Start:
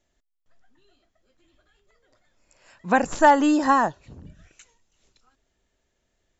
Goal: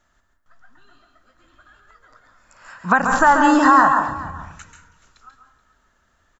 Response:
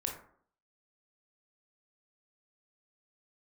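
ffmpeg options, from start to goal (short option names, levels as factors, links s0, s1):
-filter_complex "[0:a]firequalizer=gain_entry='entry(240,0);entry(390,-6);entry(1300,15);entry(2200,-1)':delay=0.05:min_phase=1,alimiter=limit=0.299:level=0:latency=1:release=254,aecho=1:1:428:0.112,asplit=2[s0][s1];[1:a]atrim=start_sample=2205,adelay=137[s2];[s1][s2]afir=irnorm=-1:irlink=0,volume=0.531[s3];[s0][s3]amix=inputs=2:normalize=0,volume=2.11"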